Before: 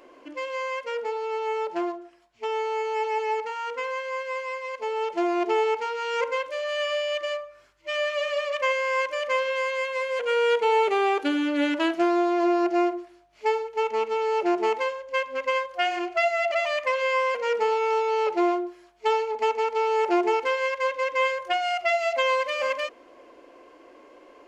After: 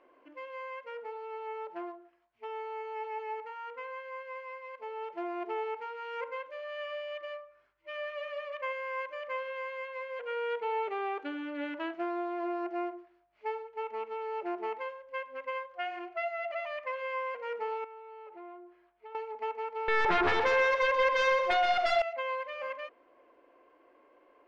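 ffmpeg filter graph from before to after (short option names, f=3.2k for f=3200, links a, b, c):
-filter_complex "[0:a]asettb=1/sr,asplit=3[a][b][c];[a]atrim=end=17.844[d];[b]atrim=start=17.84:end=19.15,asetpts=PTS-STARTPTS,afade=t=in:d=0.004:c=qsin,afade=t=out:st=1.306:d=0.004:c=qsin,lowpass=3.6k,acompressor=threshold=-37dB:ratio=3:attack=3.2:release=140:knee=1:detection=peak[e];[c]atrim=start=19.146[f];[d][e]acrossfade=d=0.004:c1=hsin:c2=qsin[g];[g][f]acrossfade=d=0.004:c1=qsin:c2=hsin,asettb=1/sr,asplit=3[h][i][j];[h]atrim=end=19.884[k];[i]atrim=start=19.88:end=22.02,asetpts=PTS-STARTPTS,afade=t=in:d=0.004:c=qsin,afade=t=out:st=2.136:d=0.004:c=qsin,highpass=f=270:w=0.5412,highpass=f=270:w=1.3066,aeval=exprs='0.266*sin(PI/2*4.47*val(0)/0.266)':c=same,aecho=1:1:126|252|378|504|630:0.355|0.153|0.0656|0.0282|0.0121,atrim=end_sample=94374[l];[j]atrim=start=22.016[m];[k][l]acrossfade=d=0.004:c1=hsin:c2=qsin[n];[n][m]acrossfade=d=0.004:c1=qsin:c2=hsin,lowpass=2.1k,lowshelf=f=500:g=-7,volume=-8.5dB"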